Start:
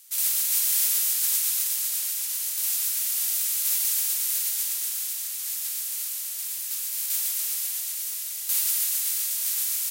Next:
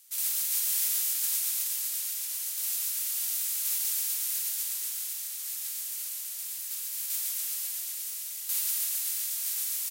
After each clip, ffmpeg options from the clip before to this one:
-filter_complex "[0:a]asplit=6[a][b][c][d][e][f];[b]adelay=141,afreqshift=86,volume=-10dB[g];[c]adelay=282,afreqshift=172,volume=-16dB[h];[d]adelay=423,afreqshift=258,volume=-22dB[i];[e]adelay=564,afreqshift=344,volume=-28.1dB[j];[f]adelay=705,afreqshift=430,volume=-34.1dB[k];[a][g][h][i][j][k]amix=inputs=6:normalize=0,volume=-5.5dB"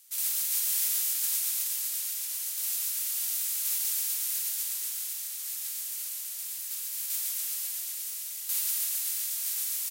-af anull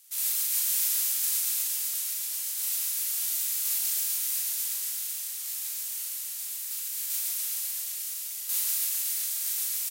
-filter_complex "[0:a]asplit=2[a][b];[b]adelay=38,volume=-4dB[c];[a][c]amix=inputs=2:normalize=0"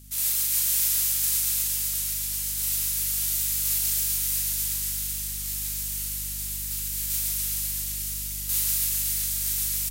-af "aeval=exprs='val(0)+0.00282*(sin(2*PI*50*n/s)+sin(2*PI*2*50*n/s)/2+sin(2*PI*3*50*n/s)/3+sin(2*PI*4*50*n/s)/4+sin(2*PI*5*50*n/s)/5)':c=same,asubboost=boost=3:cutoff=240,volume=3dB"

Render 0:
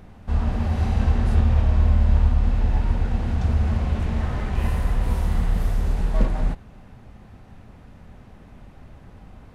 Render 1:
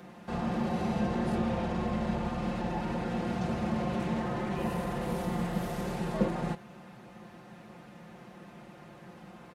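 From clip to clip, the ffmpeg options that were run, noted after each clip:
-filter_complex "[0:a]highpass=200,aecho=1:1:5.7:0.79,acrossover=split=290|860[a][b][c];[c]alimiter=level_in=13dB:limit=-24dB:level=0:latency=1:release=30,volume=-13dB[d];[a][b][d]amix=inputs=3:normalize=0"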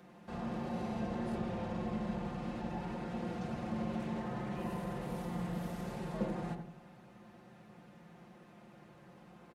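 -filter_complex "[0:a]asplit=2[a][b];[b]adelay=86,lowpass=f=830:p=1,volume=-4dB,asplit=2[c][d];[d]adelay=86,lowpass=f=830:p=1,volume=0.51,asplit=2[e][f];[f]adelay=86,lowpass=f=830:p=1,volume=0.51,asplit=2[g][h];[h]adelay=86,lowpass=f=830:p=1,volume=0.51,asplit=2[i][j];[j]adelay=86,lowpass=f=830:p=1,volume=0.51,asplit=2[k][l];[l]adelay=86,lowpass=f=830:p=1,volume=0.51,asplit=2[m][n];[n]adelay=86,lowpass=f=830:p=1,volume=0.51[o];[a][c][e][g][i][k][m][o]amix=inputs=8:normalize=0,volume=-8.5dB"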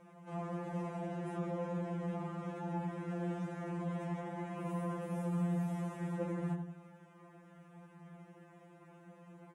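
-af "afftfilt=real='re*2.83*eq(mod(b,8),0)':imag='im*2.83*eq(mod(b,8),0)':win_size=2048:overlap=0.75"

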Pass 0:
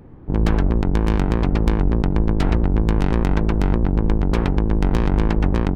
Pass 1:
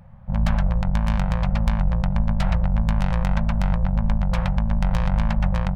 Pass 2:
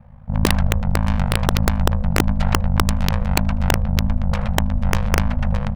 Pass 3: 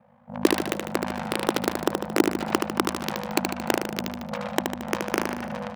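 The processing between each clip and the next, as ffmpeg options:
-af "afftfilt=real='re*(1-between(b*sr/4096,220,510))':imag='im*(1-between(b*sr/4096,220,510))':win_size=4096:overlap=0.75,volume=-2dB"
-af "aeval=exprs='val(0)*sin(2*PI*26*n/s)':c=same,aecho=1:1:79:0.075,aeval=exprs='(mod(3.16*val(0)+1,2)-1)/3.16':c=same,volume=4.5dB"
-filter_complex "[0:a]highpass=f=330:t=q:w=3.4,asplit=2[a][b];[b]aecho=0:1:75|150|225|300|375|450|525:0.562|0.304|0.164|0.0885|0.0478|0.0258|0.0139[c];[a][c]amix=inputs=2:normalize=0,volume=-5.5dB"

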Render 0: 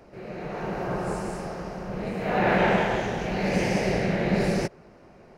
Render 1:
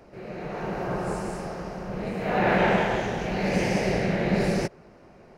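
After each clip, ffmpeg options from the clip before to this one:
-af anull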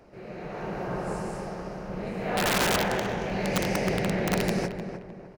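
-filter_complex "[0:a]aeval=exprs='(mod(5.62*val(0)+1,2)-1)/5.62':c=same,asplit=2[a][b];[b]adelay=305,lowpass=f=1.7k:p=1,volume=-8dB,asplit=2[c][d];[d]adelay=305,lowpass=f=1.7k:p=1,volume=0.41,asplit=2[e][f];[f]adelay=305,lowpass=f=1.7k:p=1,volume=0.41,asplit=2[g][h];[h]adelay=305,lowpass=f=1.7k:p=1,volume=0.41,asplit=2[i][j];[j]adelay=305,lowpass=f=1.7k:p=1,volume=0.41[k];[c][e][g][i][k]amix=inputs=5:normalize=0[l];[a][l]amix=inputs=2:normalize=0,volume=-3dB"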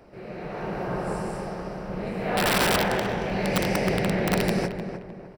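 -af "bandreject=f=6.6k:w=5.3,volume=2.5dB"

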